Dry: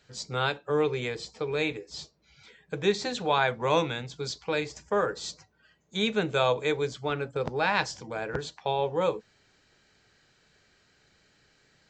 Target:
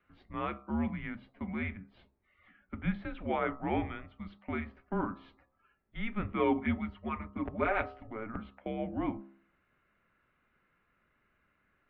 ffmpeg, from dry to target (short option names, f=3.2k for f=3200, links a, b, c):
-filter_complex "[0:a]asettb=1/sr,asplit=3[a][b][c];[a]atrim=end=6.394[d];[b]atrim=start=6.39:end=8.07,asetpts=PTS-STARTPTS,afade=t=in:d=0.004:c=qsin,afade=t=out:st=1.676:d=0.004:c=qsin,aecho=1:1:6.2:0.8,atrim=end_sample=74088[e];[c]atrim=start=8.066[f];[d][e]acrossfade=d=0.004:c1=hsin:c2=qsin[g];[g][f]acrossfade=d=0.004:c1=qsin:c2=hsin,highpass=f=160:t=q:w=0.5412,highpass=f=160:t=q:w=1.307,lowpass=f=2.7k:t=q:w=0.5176,lowpass=f=2.7k:t=q:w=0.7071,lowpass=f=2.7k:t=q:w=1.932,afreqshift=-220,bandreject=f=67.04:t=h:w=4,bandreject=f=134.08:t=h:w=4,bandreject=f=201.12:t=h:w=4,bandreject=f=268.16:t=h:w=4,bandreject=f=335.2:t=h:w=4,bandreject=f=402.24:t=h:w=4,bandreject=f=469.28:t=h:w=4,bandreject=f=536.32:t=h:w=4,bandreject=f=603.36:t=h:w=4,bandreject=f=670.4:t=h:w=4,bandreject=f=737.44:t=h:w=4,bandreject=f=804.48:t=h:w=4,bandreject=f=871.52:t=h:w=4,bandreject=f=938.56:t=h:w=4,bandreject=f=1.0056k:t=h:w=4,bandreject=f=1.07264k:t=h:w=4,bandreject=f=1.13968k:t=h:w=4,bandreject=f=1.20672k:t=h:w=4,bandreject=f=1.27376k:t=h:w=4,bandreject=f=1.3408k:t=h:w=4,volume=-6.5dB"